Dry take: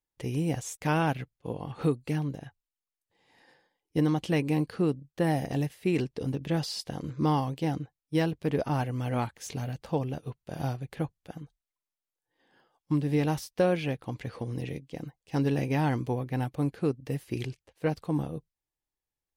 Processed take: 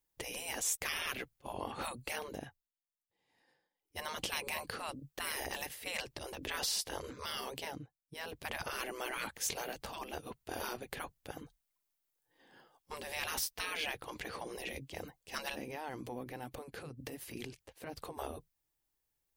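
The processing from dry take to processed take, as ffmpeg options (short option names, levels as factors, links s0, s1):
-filter_complex "[0:a]asplit=3[s0][s1][s2];[s0]afade=t=out:st=15.54:d=0.02[s3];[s1]acompressor=threshold=0.0112:ratio=6:attack=3.2:release=140:knee=1:detection=peak,afade=t=in:st=15.54:d=0.02,afade=t=out:st=18.17:d=0.02[s4];[s2]afade=t=in:st=18.17:d=0.02[s5];[s3][s4][s5]amix=inputs=3:normalize=0,asplit=5[s6][s7][s8][s9][s10];[s6]atrim=end=2.7,asetpts=PTS-STARTPTS,afade=t=out:st=2.3:d=0.4:silence=0.149624[s11];[s7]atrim=start=2.7:end=3.74,asetpts=PTS-STARTPTS,volume=0.15[s12];[s8]atrim=start=3.74:end=7.75,asetpts=PTS-STARTPTS,afade=t=in:d=0.4:silence=0.149624,afade=t=out:st=3.82:d=0.19:silence=0.237137[s13];[s9]atrim=start=7.75:end=8.22,asetpts=PTS-STARTPTS,volume=0.237[s14];[s10]atrim=start=8.22,asetpts=PTS-STARTPTS,afade=t=in:d=0.19:silence=0.237137[s15];[s11][s12][s13][s14][s15]concat=n=5:v=0:a=1,afftfilt=real='re*lt(hypot(re,im),0.0501)':imag='im*lt(hypot(re,im),0.0501)':win_size=1024:overlap=0.75,highshelf=f=11000:g=10,volume=1.5"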